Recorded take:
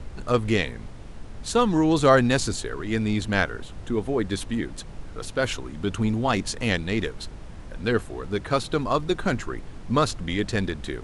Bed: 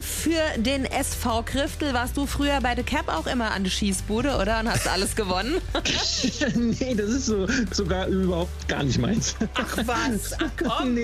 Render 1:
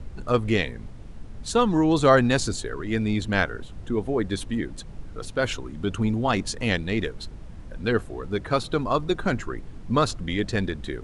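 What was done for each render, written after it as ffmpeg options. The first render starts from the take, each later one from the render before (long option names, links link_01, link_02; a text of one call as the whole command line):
ffmpeg -i in.wav -af "afftdn=noise_reduction=6:noise_floor=-40" out.wav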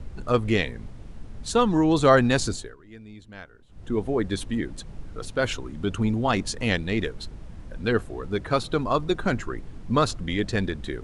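ffmpeg -i in.wav -filter_complex "[0:a]asplit=3[link_01][link_02][link_03];[link_01]atrim=end=2.76,asetpts=PTS-STARTPTS,afade=type=out:start_time=2.49:duration=0.27:silence=0.105925[link_04];[link_02]atrim=start=2.76:end=3.67,asetpts=PTS-STARTPTS,volume=-19.5dB[link_05];[link_03]atrim=start=3.67,asetpts=PTS-STARTPTS,afade=type=in:duration=0.27:silence=0.105925[link_06];[link_04][link_05][link_06]concat=n=3:v=0:a=1" out.wav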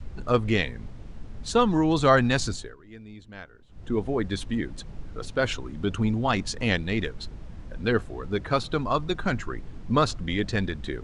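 ffmpeg -i in.wav -af "lowpass=7400,adynamicequalizer=threshold=0.0178:dfrequency=400:dqfactor=1:tfrequency=400:tqfactor=1:attack=5:release=100:ratio=0.375:range=3:mode=cutabove:tftype=bell" out.wav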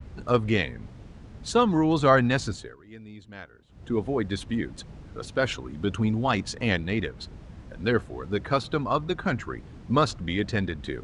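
ffmpeg -i in.wav -af "highpass=52,adynamicequalizer=threshold=0.00891:dfrequency=3300:dqfactor=0.7:tfrequency=3300:tqfactor=0.7:attack=5:release=100:ratio=0.375:range=3.5:mode=cutabove:tftype=highshelf" out.wav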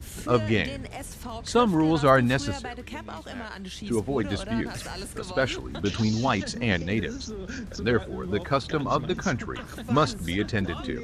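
ffmpeg -i in.wav -i bed.wav -filter_complex "[1:a]volume=-13dB[link_01];[0:a][link_01]amix=inputs=2:normalize=0" out.wav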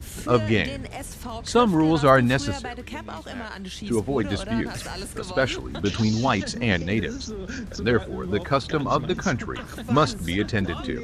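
ffmpeg -i in.wav -af "volume=2.5dB" out.wav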